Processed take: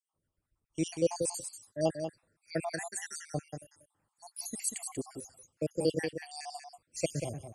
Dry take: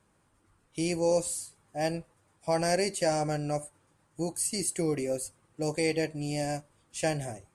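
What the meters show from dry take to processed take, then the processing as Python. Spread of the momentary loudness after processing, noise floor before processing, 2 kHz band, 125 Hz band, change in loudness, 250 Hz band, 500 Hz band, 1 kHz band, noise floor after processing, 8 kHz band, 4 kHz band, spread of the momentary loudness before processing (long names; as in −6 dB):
14 LU, −69 dBFS, −6.5 dB, −5.5 dB, −5.0 dB, −5.0 dB, −5.5 dB, −9.0 dB, −85 dBFS, −4.0 dB, −6.0 dB, 12 LU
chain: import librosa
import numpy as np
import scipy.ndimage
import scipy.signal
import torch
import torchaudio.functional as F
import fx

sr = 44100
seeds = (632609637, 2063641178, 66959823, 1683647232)

p1 = fx.spec_dropout(x, sr, seeds[0], share_pct=70)
p2 = p1 + fx.echo_single(p1, sr, ms=188, db=-6.0, dry=0)
y = fx.band_widen(p2, sr, depth_pct=40)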